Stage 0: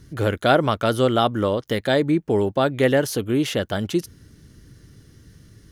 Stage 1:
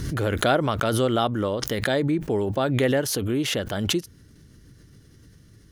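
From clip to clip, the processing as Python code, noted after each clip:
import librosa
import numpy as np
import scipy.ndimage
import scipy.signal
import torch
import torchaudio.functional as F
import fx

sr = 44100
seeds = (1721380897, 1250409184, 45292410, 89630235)

y = fx.pre_swell(x, sr, db_per_s=32.0)
y = F.gain(torch.from_numpy(y), -4.5).numpy()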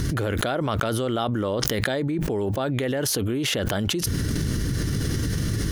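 y = fx.env_flatten(x, sr, amount_pct=100)
y = F.gain(torch.from_numpy(y), -7.0).numpy()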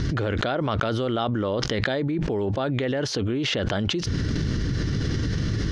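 y = scipy.signal.sosfilt(scipy.signal.butter(4, 5400.0, 'lowpass', fs=sr, output='sos'), x)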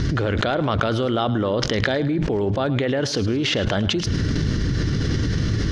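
y = fx.echo_feedback(x, sr, ms=107, feedback_pct=38, wet_db=-15.0)
y = F.gain(torch.from_numpy(y), 3.5).numpy()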